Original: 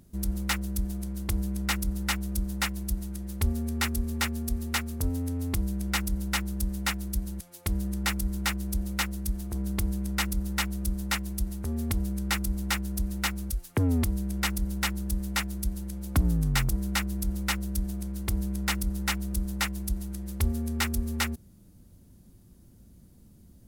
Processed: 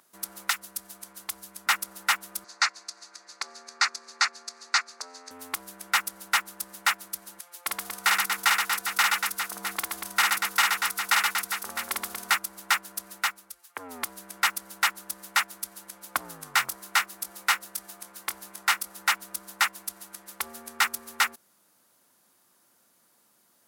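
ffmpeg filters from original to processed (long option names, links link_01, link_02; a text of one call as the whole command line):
ffmpeg -i in.wav -filter_complex "[0:a]asettb=1/sr,asplit=3[link_01][link_02][link_03];[link_01]atrim=end=0.504[link_04];[link_02]atrim=start=0.5:end=1.67,asetpts=PTS-STARTPTS,afade=type=in:duration=0.004:curve=qsin,afade=type=out:start_time=1.166:duration=0.004:curve=qsin,acrossover=split=160|3000[link_05][link_06][link_07];[link_06]acompressor=threshold=-40dB:ratio=6:attack=3.2:release=140:knee=2.83:detection=peak[link_08];[link_05][link_08][link_07]amix=inputs=3:normalize=0[link_09];[link_03]atrim=start=1.666[link_10];[link_04][link_09]acrossfade=duration=0.004:curve1=hsin:curve2=qsin[link_11];[link_11][link_10]acrossfade=duration=0.004:curve1=qsin:curve2=hsin,asettb=1/sr,asplit=3[link_12][link_13][link_14];[link_12]atrim=end=2.444[link_15];[link_13]atrim=start=2.44:end=5.31,asetpts=PTS-STARTPTS,afade=type=in:duration=0.004:curve=qsin,afade=type=out:start_time=2.866:duration=0.004:curve=qsin,highpass=490,equalizer=frequency=530:width_type=q:width=4:gain=-3,equalizer=frequency=900:width_type=q:width=4:gain=-4,equalizer=frequency=3100:width_type=q:width=4:gain=-10,equalizer=frequency=4500:width_type=q:width=4:gain=10,equalizer=frequency=6400:width_type=q:width=4:gain=5,lowpass=frequency=7000:width=0.5412,lowpass=frequency=7000:width=1.3066[link_16];[link_14]atrim=start=5.306[link_17];[link_15][link_16]acrossfade=duration=0.004:curve1=hsin:curve2=qsin[link_18];[link_18][link_17]acrossfade=duration=0.004:curve1=qsin:curve2=hsin,asettb=1/sr,asplit=3[link_19][link_20][link_21];[link_19]atrim=end=7.644[link_22];[link_20]atrim=start=7.64:end=12.35,asetpts=PTS-STARTPTS,afade=type=in:duration=0.004:curve=qsin,afade=type=out:start_time=4.706:duration=0.004:curve=qsin,aecho=1:1:50|125|237.5|406.2|659.4:0.794|0.631|0.501|0.398|0.316,atrim=end_sample=207711[link_23];[link_21]atrim=start=12.346[link_24];[link_22][link_23]acrossfade=duration=0.004:curve1=hsin:curve2=qsin[link_25];[link_25][link_24]acrossfade=duration=0.004:curve1=qsin:curve2=hsin,asettb=1/sr,asplit=3[link_26][link_27][link_28];[link_26]atrim=end=16.454[link_29];[link_27]atrim=start=16.45:end=18.97,asetpts=PTS-STARTPTS,afade=type=in:duration=0.004:curve=qsin,afade=type=out:start_time=2.516:duration=0.004:curve=qsin,asplit=2[link_30][link_31];[link_31]adelay=23,volume=-10.5dB[link_32];[link_30][link_32]amix=inputs=2:normalize=0,atrim=end_sample=111132[link_33];[link_28]atrim=start=18.966[link_34];[link_29][link_33]acrossfade=duration=0.004:curve1=hsin:curve2=qsin[link_35];[link_35][link_34]acrossfade=duration=0.004:curve1=qsin:curve2=hsin,asplit=3[link_36][link_37][link_38];[link_36]atrim=end=13.41,asetpts=PTS-STARTPTS,afade=type=out:start_time=13.11:duration=0.3:silence=0.375837[link_39];[link_37]atrim=start=13.41:end=13.75,asetpts=PTS-STARTPTS,volume=-8.5dB[link_40];[link_38]atrim=start=13.75,asetpts=PTS-STARTPTS,afade=type=in:duration=0.3:silence=0.375837[link_41];[link_39][link_40][link_41]concat=n=3:v=0:a=1,highpass=820,equalizer=frequency=1200:width=0.95:gain=7.5,volume=3dB" out.wav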